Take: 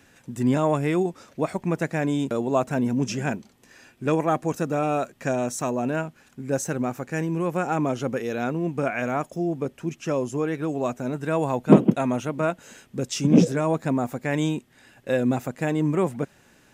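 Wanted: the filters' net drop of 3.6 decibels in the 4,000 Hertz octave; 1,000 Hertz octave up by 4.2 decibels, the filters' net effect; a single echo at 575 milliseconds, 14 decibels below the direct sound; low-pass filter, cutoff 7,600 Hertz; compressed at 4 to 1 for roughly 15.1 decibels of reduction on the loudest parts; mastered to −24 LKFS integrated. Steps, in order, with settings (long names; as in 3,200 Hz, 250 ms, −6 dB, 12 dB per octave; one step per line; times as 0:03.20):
low-pass filter 7,600 Hz
parametric band 1,000 Hz +6 dB
parametric band 4,000 Hz −5 dB
downward compressor 4 to 1, threshold −25 dBFS
single-tap delay 575 ms −14 dB
level +6 dB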